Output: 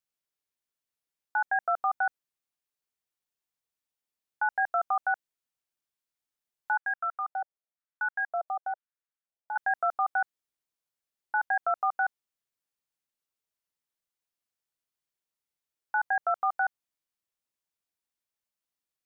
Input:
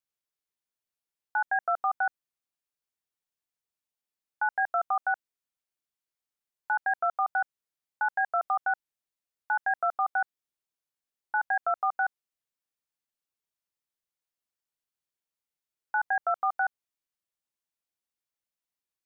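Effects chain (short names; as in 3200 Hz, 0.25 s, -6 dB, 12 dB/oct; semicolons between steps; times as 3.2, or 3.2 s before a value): 6.77–9.56 LFO band-pass square 1 Hz 640–1500 Hz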